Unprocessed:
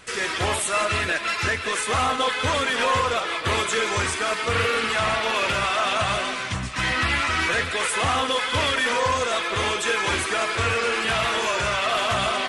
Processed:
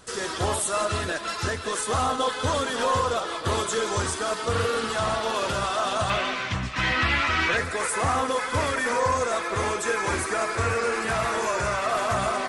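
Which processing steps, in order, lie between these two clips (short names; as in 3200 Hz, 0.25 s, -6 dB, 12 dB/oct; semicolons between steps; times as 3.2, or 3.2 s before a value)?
bell 2300 Hz -13.5 dB 0.88 oct, from 6.1 s 10000 Hz, from 7.57 s 3100 Hz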